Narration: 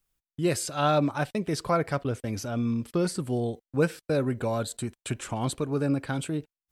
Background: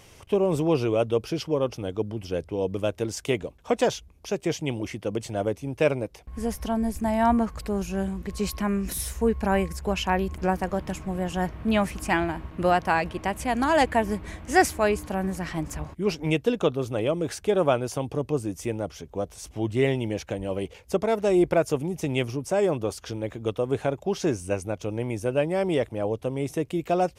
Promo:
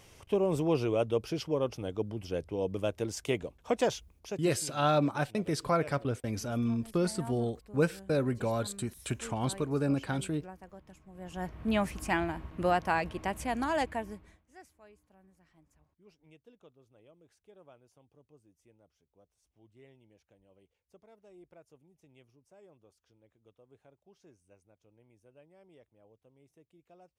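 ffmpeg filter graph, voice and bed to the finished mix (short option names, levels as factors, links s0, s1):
-filter_complex "[0:a]adelay=4000,volume=0.708[s0];[1:a]volume=3.76,afade=t=out:st=4.02:d=0.7:silence=0.133352,afade=t=in:st=11.12:d=0.57:silence=0.141254,afade=t=out:st=13.39:d=1.05:silence=0.0354813[s1];[s0][s1]amix=inputs=2:normalize=0"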